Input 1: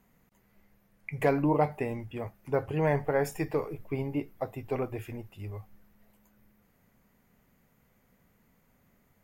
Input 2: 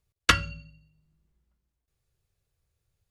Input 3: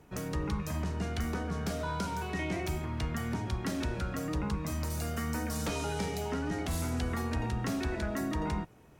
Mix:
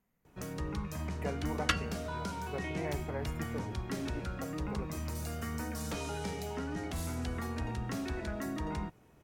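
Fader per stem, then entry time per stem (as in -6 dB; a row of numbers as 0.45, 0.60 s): -13.0, -10.0, -4.0 dB; 0.00, 1.40, 0.25 s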